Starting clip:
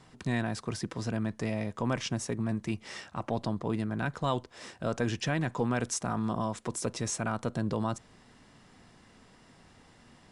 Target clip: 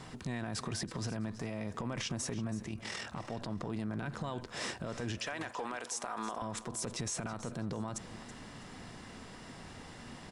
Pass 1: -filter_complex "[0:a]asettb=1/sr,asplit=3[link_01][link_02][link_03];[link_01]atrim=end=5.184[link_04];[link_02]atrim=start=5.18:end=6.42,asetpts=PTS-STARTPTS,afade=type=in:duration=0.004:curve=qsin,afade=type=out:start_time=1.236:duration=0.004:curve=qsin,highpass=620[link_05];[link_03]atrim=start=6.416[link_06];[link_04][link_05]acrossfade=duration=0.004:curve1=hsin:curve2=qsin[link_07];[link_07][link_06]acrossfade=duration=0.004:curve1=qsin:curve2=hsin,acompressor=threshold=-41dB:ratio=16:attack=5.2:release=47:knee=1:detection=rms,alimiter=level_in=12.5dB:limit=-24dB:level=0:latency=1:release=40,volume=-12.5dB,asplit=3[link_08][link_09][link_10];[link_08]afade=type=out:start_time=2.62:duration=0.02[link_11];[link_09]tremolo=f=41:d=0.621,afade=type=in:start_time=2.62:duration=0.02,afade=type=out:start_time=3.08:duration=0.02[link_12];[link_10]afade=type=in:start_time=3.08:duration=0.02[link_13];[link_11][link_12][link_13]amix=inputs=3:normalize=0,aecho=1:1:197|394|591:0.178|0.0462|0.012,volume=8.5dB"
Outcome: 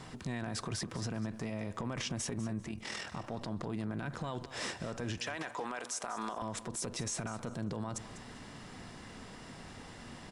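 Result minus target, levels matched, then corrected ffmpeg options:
echo 130 ms early
-filter_complex "[0:a]asettb=1/sr,asplit=3[link_01][link_02][link_03];[link_01]atrim=end=5.184[link_04];[link_02]atrim=start=5.18:end=6.42,asetpts=PTS-STARTPTS,afade=type=in:duration=0.004:curve=qsin,afade=type=out:start_time=1.236:duration=0.004:curve=qsin,highpass=620[link_05];[link_03]atrim=start=6.416[link_06];[link_04][link_05]acrossfade=duration=0.004:curve1=hsin:curve2=qsin[link_07];[link_07][link_06]acrossfade=duration=0.004:curve1=qsin:curve2=hsin,acompressor=threshold=-41dB:ratio=16:attack=5.2:release=47:knee=1:detection=rms,alimiter=level_in=12.5dB:limit=-24dB:level=0:latency=1:release=40,volume=-12.5dB,asplit=3[link_08][link_09][link_10];[link_08]afade=type=out:start_time=2.62:duration=0.02[link_11];[link_09]tremolo=f=41:d=0.621,afade=type=in:start_time=2.62:duration=0.02,afade=type=out:start_time=3.08:duration=0.02[link_12];[link_10]afade=type=in:start_time=3.08:duration=0.02[link_13];[link_11][link_12][link_13]amix=inputs=3:normalize=0,aecho=1:1:327|654|981:0.178|0.0462|0.012,volume=8.5dB"

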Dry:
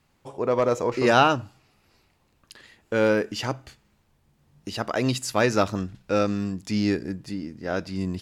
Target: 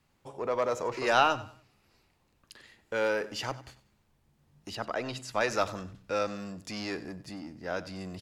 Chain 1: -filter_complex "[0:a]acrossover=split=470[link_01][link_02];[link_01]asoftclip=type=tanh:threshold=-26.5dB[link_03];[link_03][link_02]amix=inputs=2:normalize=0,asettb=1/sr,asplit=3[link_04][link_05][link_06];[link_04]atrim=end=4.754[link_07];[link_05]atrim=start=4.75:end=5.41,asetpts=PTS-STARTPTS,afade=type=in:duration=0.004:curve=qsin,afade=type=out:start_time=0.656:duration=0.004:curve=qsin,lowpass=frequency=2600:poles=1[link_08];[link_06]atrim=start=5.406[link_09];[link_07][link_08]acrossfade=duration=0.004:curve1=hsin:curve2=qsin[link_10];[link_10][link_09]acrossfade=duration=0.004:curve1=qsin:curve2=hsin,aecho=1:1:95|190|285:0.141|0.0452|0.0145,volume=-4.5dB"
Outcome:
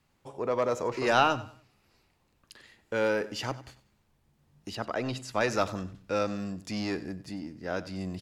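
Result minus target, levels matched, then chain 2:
soft clipping: distortion −5 dB
-filter_complex "[0:a]acrossover=split=470[link_01][link_02];[link_01]asoftclip=type=tanh:threshold=-35dB[link_03];[link_03][link_02]amix=inputs=2:normalize=0,asettb=1/sr,asplit=3[link_04][link_05][link_06];[link_04]atrim=end=4.754[link_07];[link_05]atrim=start=4.75:end=5.41,asetpts=PTS-STARTPTS,afade=type=in:duration=0.004:curve=qsin,afade=type=out:start_time=0.656:duration=0.004:curve=qsin,lowpass=frequency=2600:poles=1[link_08];[link_06]atrim=start=5.406[link_09];[link_07][link_08]acrossfade=duration=0.004:curve1=hsin:curve2=qsin[link_10];[link_10][link_09]acrossfade=duration=0.004:curve1=qsin:curve2=hsin,aecho=1:1:95|190|285:0.141|0.0452|0.0145,volume=-4.5dB"

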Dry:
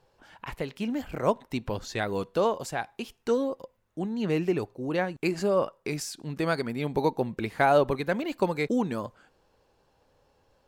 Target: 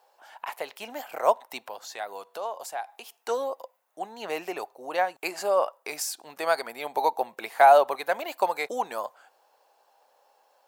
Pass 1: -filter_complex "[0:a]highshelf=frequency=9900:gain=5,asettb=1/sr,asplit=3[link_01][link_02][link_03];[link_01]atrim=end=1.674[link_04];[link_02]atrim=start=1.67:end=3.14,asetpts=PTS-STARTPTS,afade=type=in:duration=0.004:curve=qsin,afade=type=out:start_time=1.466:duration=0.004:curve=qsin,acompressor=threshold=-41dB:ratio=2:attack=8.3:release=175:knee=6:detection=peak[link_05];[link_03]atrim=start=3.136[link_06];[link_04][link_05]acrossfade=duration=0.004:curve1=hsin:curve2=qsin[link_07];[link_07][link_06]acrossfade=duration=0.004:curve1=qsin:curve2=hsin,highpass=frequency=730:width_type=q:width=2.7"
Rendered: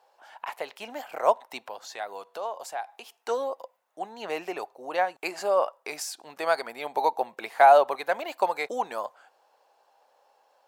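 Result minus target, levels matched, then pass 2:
8,000 Hz band −3.5 dB
-filter_complex "[0:a]highshelf=frequency=9900:gain=15.5,asettb=1/sr,asplit=3[link_01][link_02][link_03];[link_01]atrim=end=1.674[link_04];[link_02]atrim=start=1.67:end=3.14,asetpts=PTS-STARTPTS,afade=type=in:duration=0.004:curve=qsin,afade=type=out:start_time=1.466:duration=0.004:curve=qsin,acompressor=threshold=-41dB:ratio=2:attack=8.3:release=175:knee=6:detection=peak[link_05];[link_03]atrim=start=3.136[link_06];[link_04][link_05]acrossfade=duration=0.004:curve1=hsin:curve2=qsin[link_07];[link_07][link_06]acrossfade=duration=0.004:curve1=qsin:curve2=hsin,highpass=frequency=730:width_type=q:width=2.7"

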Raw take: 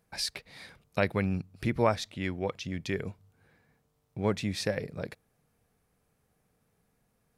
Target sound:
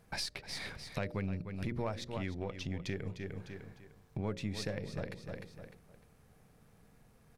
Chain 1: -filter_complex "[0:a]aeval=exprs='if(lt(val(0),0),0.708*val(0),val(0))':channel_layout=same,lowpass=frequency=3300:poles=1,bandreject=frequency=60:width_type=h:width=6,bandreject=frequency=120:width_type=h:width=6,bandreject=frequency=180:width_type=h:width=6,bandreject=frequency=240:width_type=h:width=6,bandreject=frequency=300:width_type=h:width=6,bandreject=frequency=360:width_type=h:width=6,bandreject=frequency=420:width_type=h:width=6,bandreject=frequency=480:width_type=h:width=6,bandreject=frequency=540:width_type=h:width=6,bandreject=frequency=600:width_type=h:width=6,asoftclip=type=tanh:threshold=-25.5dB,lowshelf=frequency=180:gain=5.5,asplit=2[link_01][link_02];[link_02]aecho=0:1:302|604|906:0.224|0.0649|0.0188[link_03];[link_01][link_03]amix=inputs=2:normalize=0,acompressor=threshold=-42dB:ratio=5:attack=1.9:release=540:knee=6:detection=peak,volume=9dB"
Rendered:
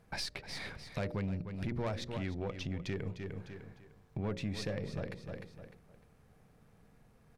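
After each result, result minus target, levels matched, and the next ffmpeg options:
soft clipping: distortion +12 dB; 8,000 Hz band −3.0 dB
-filter_complex "[0:a]aeval=exprs='if(lt(val(0),0),0.708*val(0),val(0))':channel_layout=same,lowpass=frequency=3300:poles=1,bandreject=frequency=60:width_type=h:width=6,bandreject=frequency=120:width_type=h:width=6,bandreject=frequency=180:width_type=h:width=6,bandreject=frequency=240:width_type=h:width=6,bandreject=frequency=300:width_type=h:width=6,bandreject=frequency=360:width_type=h:width=6,bandreject=frequency=420:width_type=h:width=6,bandreject=frequency=480:width_type=h:width=6,bandreject=frequency=540:width_type=h:width=6,bandreject=frequency=600:width_type=h:width=6,asoftclip=type=tanh:threshold=-15dB,lowshelf=frequency=180:gain=5.5,asplit=2[link_01][link_02];[link_02]aecho=0:1:302|604|906:0.224|0.0649|0.0188[link_03];[link_01][link_03]amix=inputs=2:normalize=0,acompressor=threshold=-42dB:ratio=5:attack=1.9:release=540:knee=6:detection=peak,volume=9dB"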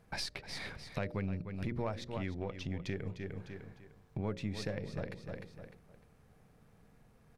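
8,000 Hz band −3.0 dB
-filter_complex "[0:a]aeval=exprs='if(lt(val(0),0),0.708*val(0),val(0))':channel_layout=same,lowpass=frequency=7700:poles=1,bandreject=frequency=60:width_type=h:width=6,bandreject=frequency=120:width_type=h:width=6,bandreject=frequency=180:width_type=h:width=6,bandreject=frequency=240:width_type=h:width=6,bandreject=frequency=300:width_type=h:width=6,bandreject=frequency=360:width_type=h:width=6,bandreject=frequency=420:width_type=h:width=6,bandreject=frequency=480:width_type=h:width=6,bandreject=frequency=540:width_type=h:width=6,bandreject=frequency=600:width_type=h:width=6,asoftclip=type=tanh:threshold=-15dB,lowshelf=frequency=180:gain=5.5,asplit=2[link_01][link_02];[link_02]aecho=0:1:302|604|906:0.224|0.0649|0.0188[link_03];[link_01][link_03]amix=inputs=2:normalize=0,acompressor=threshold=-42dB:ratio=5:attack=1.9:release=540:knee=6:detection=peak,volume=9dB"

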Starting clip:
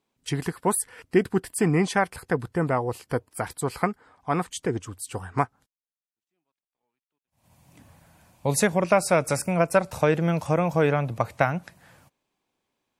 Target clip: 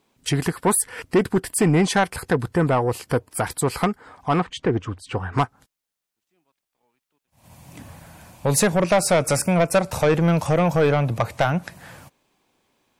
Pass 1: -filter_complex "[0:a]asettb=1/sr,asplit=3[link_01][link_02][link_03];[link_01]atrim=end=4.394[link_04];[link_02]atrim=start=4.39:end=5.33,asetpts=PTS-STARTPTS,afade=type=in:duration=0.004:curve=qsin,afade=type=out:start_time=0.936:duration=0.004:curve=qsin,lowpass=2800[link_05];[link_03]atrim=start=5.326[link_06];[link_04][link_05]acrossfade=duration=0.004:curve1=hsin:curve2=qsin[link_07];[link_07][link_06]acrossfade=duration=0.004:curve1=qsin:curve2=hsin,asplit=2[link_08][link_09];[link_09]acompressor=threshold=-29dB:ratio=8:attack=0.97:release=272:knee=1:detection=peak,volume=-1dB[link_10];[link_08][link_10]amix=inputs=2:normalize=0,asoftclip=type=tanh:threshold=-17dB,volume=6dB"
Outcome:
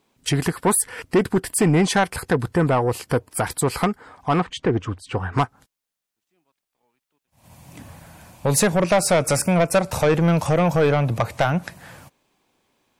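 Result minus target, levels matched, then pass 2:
downward compressor: peak gain reduction −6.5 dB
-filter_complex "[0:a]asettb=1/sr,asplit=3[link_01][link_02][link_03];[link_01]atrim=end=4.394[link_04];[link_02]atrim=start=4.39:end=5.33,asetpts=PTS-STARTPTS,afade=type=in:duration=0.004:curve=qsin,afade=type=out:start_time=0.936:duration=0.004:curve=qsin,lowpass=2800[link_05];[link_03]atrim=start=5.326[link_06];[link_04][link_05]acrossfade=duration=0.004:curve1=hsin:curve2=qsin[link_07];[link_07][link_06]acrossfade=duration=0.004:curve1=qsin:curve2=hsin,asplit=2[link_08][link_09];[link_09]acompressor=threshold=-36.5dB:ratio=8:attack=0.97:release=272:knee=1:detection=peak,volume=-1dB[link_10];[link_08][link_10]amix=inputs=2:normalize=0,asoftclip=type=tanh:threshold=-17dB,volume=6dB"

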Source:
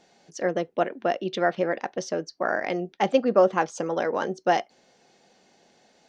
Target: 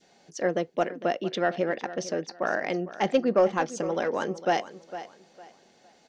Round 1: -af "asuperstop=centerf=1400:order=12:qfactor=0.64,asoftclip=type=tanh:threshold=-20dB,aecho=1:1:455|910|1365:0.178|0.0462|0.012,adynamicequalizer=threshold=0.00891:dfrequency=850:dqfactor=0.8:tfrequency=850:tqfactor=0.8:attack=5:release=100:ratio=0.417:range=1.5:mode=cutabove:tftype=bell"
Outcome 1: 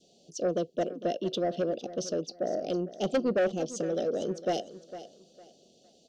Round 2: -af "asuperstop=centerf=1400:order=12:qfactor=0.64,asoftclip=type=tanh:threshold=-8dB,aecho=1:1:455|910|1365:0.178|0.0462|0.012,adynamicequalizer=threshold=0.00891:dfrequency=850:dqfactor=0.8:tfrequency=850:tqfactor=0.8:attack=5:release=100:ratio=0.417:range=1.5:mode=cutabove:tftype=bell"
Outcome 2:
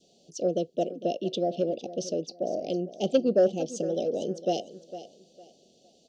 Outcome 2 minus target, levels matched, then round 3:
1,000 Hz band −6.5 dB
-af "asoftclip=type=tanh:threshold=-8dB,aecho=1:1:455|910|1365:0.178|0.0462|0.012,adynamicequalizer=threshold=0.00891:dfrequency=850:dqfactor=0.8:tfrequency=850:tqfactor=0.8:attack=5:release=100:ratio=0.417:range=1.5:mode=cutabove:tftype=bell"

